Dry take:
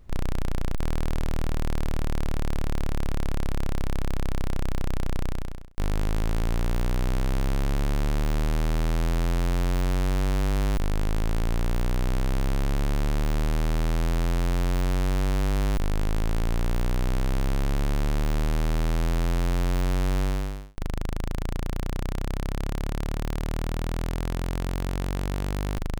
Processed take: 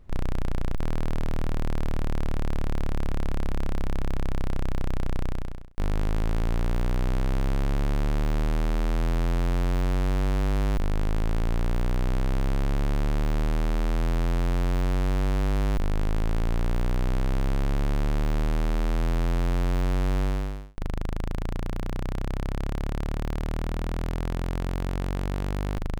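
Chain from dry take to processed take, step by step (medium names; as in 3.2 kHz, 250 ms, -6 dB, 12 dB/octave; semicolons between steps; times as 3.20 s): treble shelf 3.9 kHz -7 dB; hum notches 60/120 Hz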